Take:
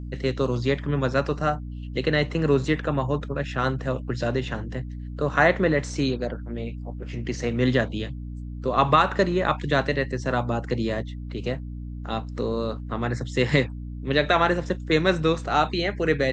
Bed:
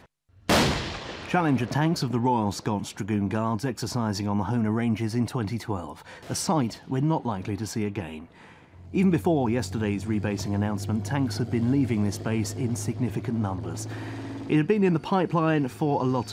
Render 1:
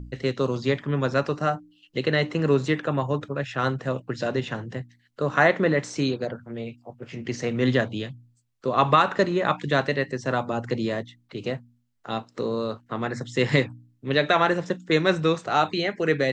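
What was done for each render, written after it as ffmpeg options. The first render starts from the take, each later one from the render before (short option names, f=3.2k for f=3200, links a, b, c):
-af "bandreject=f=60:t=h:w=4,bandreject=f=120:t=h:w=4,bandreject=f=180:t=h:w=4,bandreject=f=240:t=h:w=4,bandreject=f=300:t=h:w=4"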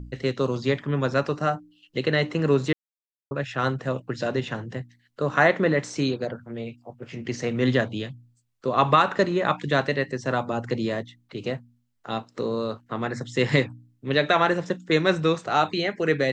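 -filter_complex "[0:a]asplit=3[a][b][c];[a]atrim=end=2.73,asetpts=PTS-STARTPTS,afade=t=out:st=2.726:d=0.004:c=hsin[d];[b]atrim=start=2.73:end=3.31,asetpts=PTS-STARTPTS,volume=0[e];[c]atrim=start=3.31,asetpts=PTS-STARTPTS,afade=t=in:d=0.004:c=hsin[f];[d][e][f]concat=n=3:v=0:a=1"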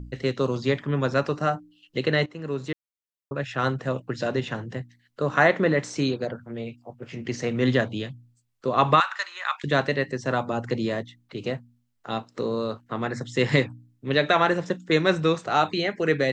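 -filter_complex "[0:a]asettb=1/sr,asplit=3[a][b][c];[a]atrim=end=9.004[d];[b]atrim=start=9:end=9.64,asetpts=PTS-STARTPTS,afade=t=in:d=0.004:c=qsin,afade=t=out:st=0.636:d=0.004:c=qsin,highpass=f=1.1k:w=0.5412,highpass=f=1.1k:w=1.3066[e];[c]atrim=start=9.636[f];[d][e]acrossfade=d=0.004:c1=hsin:c2=qsin[g];[g][f]acrossfade=d=0.004:c1=qsin:c2=hsin,asplit=2[h][i];[h]atrim=end=2.26,asetpts=PTS-STARTPTS,afade=t=out:st=2.256:d=0.004:c=hsin:silence=0.177828[j];[i]atrim=start=2.26,asetpts=PTS-STARTPTS,afade=t=in:d=1.28:silence=0.177828[k];[j][k]concat=n=2:v=0:a=1"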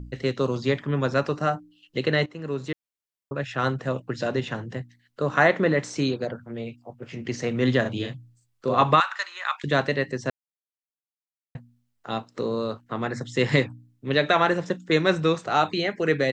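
-filter_complex "[0:a]asplit=3[a][b][c];[a]afade=t=out:st=7.84:d=0.02[d];[b]asplit=2[e][f];[f]adelay=40,volume=-3dB[g];[e][g]amix=inputs=2:normalize=0,afade=t=in:st=7.84:d=0.02,afade=t=out:st=8.82:d=0.02[h];[c]afade=t=in:st=8.82:d=0.02[i];[d][h][i]amix=inputs=3:normalize=0,asplit=3[j][k][l];[j]atrim=end=10.3,asetpts=PTS-STARTPTS,afade=t=out:st=10.296:d=0.004:c=hsin[m];[k]atrim=start=10.3:end=11.55,asetpts=PTS-STARTPTS,volume=0[n];[l]atrim=start=11.55,asetpts=PTS-STARTPTS,afade=t=in:d=0.004:c=hsin[o];[m][n][o]concat=n=3:v=0:a=1"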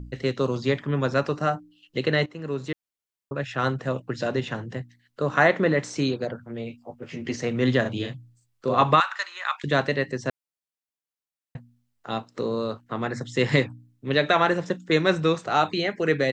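-filter_complex "[0:a]asettb=1/sr,asplit=3[a][b][c];[a]atrim=end=6.694[d];[b]atrim=start=6.69:end=7.36,asetpts=PTS-STARTPTS,afade=t=in:d=0.004:c=qsin,afade=t=out:st=0.666:d=0.004:c=qsin,asplit=2[e][f];[f]adelay=12,volume=-4.5dB[g];[e][g]amix=inputs=2:normalize=0,atrim=end_sample=29547[h];[c]atrim=start=7.356[i];[d][h]acrossfade=d=0.004:c1=hsin:c2=qsin[j];[j][i]acrossfade=d=0.004:c1=qsin:c2=hsin"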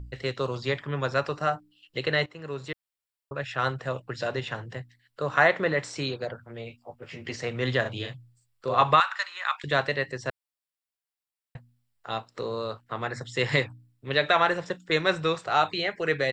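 -af "equalizer=f=240:t=o:w=1.4:g=-11.5,bandreject=f=6.3k:w=7"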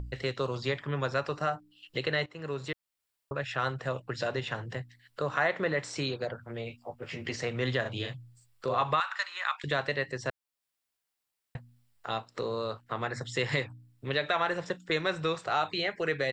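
-filter_complex "[0:a]asplit=2[a][b];[b]alimiter=limit=-15.5dB:level=0:latency=1:release=137,volume=1dB[c];[a][c]amix=inputs=2:normalize=0,acompressor=threshold=-44dB:ratio=1.5"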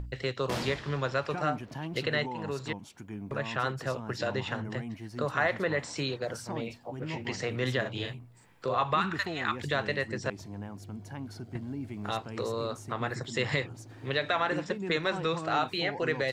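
-filter_complex "[1:a]volume=-14.5dB[a];[0:a][a]amix=inputs=2:normalize=0"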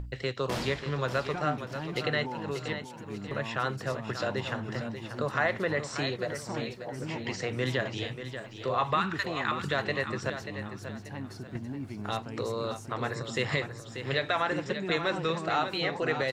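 -af "aecho=1:1:587|1174|1761|2348:0.335|0.117|0.041|0.0144"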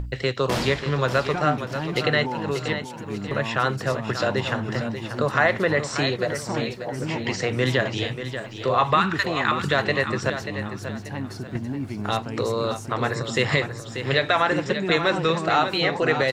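-af "volume=8dB"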